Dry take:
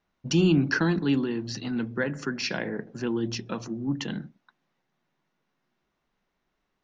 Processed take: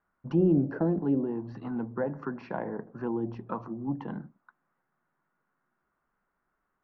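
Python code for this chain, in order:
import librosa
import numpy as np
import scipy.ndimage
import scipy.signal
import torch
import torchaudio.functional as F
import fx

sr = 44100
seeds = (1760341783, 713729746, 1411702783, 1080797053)

y = fx.envelope_lowpass(x, sr, base_hz=550.0, top_hz=1400.0, q=3.2, full_db=-19.0, direction='down')
y = F.gain(torch.from_numpy(y), -4.5).numpy()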